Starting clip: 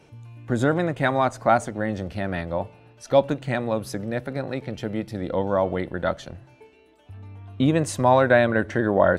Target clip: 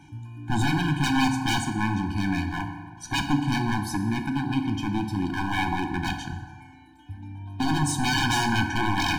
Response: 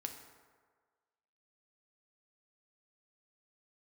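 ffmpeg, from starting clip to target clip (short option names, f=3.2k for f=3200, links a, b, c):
-filter_complex "[0:a]aeval=exprs='0.0841*(abs(mod(val(0)/0.0841+3,4)-2)-1)':c=same[a];[1:a]atrim=start_sample=2205[b];[a][b]afir=irnorm=-1:irlink=0,afftfilt=real='re*eq(mod(floor(b*sr/1024/360),2),0)':imag='im*eq(mod(floor(b*sr/1024/360),2),0)':win_size=1024:overlap=0.75,volume=8dB"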